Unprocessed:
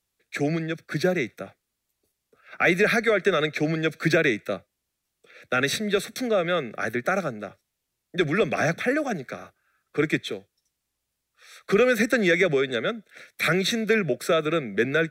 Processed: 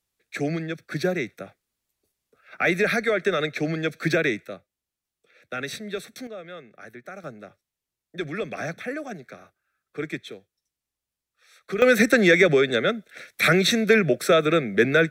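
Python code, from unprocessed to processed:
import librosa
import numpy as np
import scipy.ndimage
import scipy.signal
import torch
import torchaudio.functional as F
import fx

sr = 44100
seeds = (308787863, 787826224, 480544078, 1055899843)

y = fx.gain(x, sr, db=fx.steps((0.0, -1.5), (4.46, -8.0), (6.27, -15.5), (7.24, -7.5), (11.82, 4.0)))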